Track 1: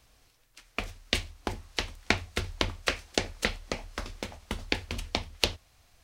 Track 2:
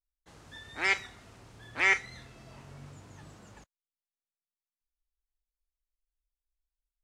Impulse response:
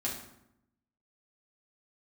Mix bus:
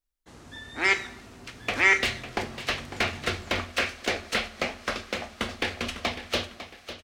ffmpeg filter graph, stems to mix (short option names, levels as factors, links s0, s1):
-filter_complex "[0:a]equalizer=f=920:w=4.8:g=-8.5,asplit=2[s0][s1];[s1]highpass=f=720:p=1,volume=31.6,asoftclip=type=tanh:threshold=0.668[s2];[s0][s2]amix=inputs=2:normalize=0,lowpass=f=2100:p=1,volume=0.501,adelay=900,volume=0.335,asplit=3[s3][s4][s5];[s4]volume=0.2[s6];[s5]volume=0.282[s7];[1:a]equalizer=f=280:t=o:w=0.77:g=5.5,volume=1.33,asplit=2[s8][s9];[s9]volume=0.299[s10];[2:a]atrim=start_sample=2205[s11];[s6][s10]amix=inputs=2:normalize=0[s12];[s12][s11]afir=irnorm=-1:irlink=0[s13];[s7]aecho=0:1:551|1102|1653|2204|2755:1|0.34|0.116|0.0393|0.0134[s14];[s3][s8][s13][s14]amix=inputs=4:normalize=0"